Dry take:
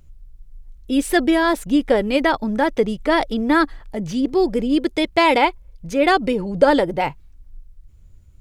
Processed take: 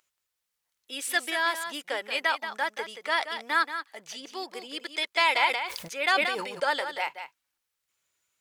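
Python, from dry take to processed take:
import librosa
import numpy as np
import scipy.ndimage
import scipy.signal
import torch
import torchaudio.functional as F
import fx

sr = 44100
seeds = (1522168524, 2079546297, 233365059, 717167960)

y = scipy.signal.sosfilt(scipy.signal.butter(2, 1200.0, 'highpass', fs=sr, output='sos'), x)
y = y + 10.0 ** (-9.5 / 20.0) * np.pad(y, (int(180 * sr / 1000.0), 0))[:len(y)]
y = fx.sustainer(y, sr, db_per_s=44.0, at=(5.46, 6.65))
y = y * librosa.db_to_amplitude(-3.0)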